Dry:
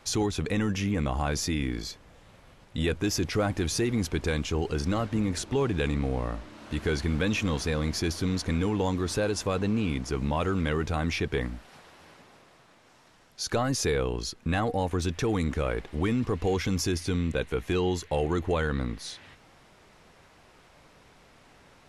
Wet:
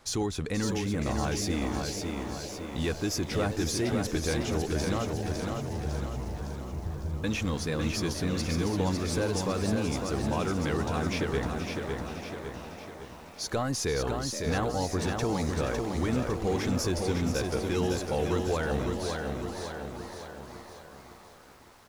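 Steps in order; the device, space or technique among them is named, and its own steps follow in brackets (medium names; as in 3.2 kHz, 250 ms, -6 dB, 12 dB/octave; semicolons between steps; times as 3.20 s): 5.12–7.24 s: inverse Chebyshev low-pass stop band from 640 Hz, stop band 70 dB; exciter from parts (in parallel at -6 dB: high-pass 2.4 kHz 24 dB/octave + saturation -38.5 dBFS, distortion -6 dB); on the sum: frequency-shifting echo 477 ms, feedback 60%, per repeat +130 Hz, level -11.5 dB; bit-crushed delay 555 ms, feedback 55%, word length 9-bit, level -4.5 dB; trim -3 dB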